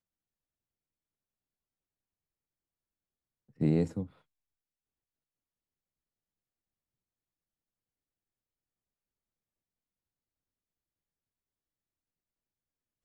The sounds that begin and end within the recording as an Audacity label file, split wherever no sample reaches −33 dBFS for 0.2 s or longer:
3.610000	4.030000	sound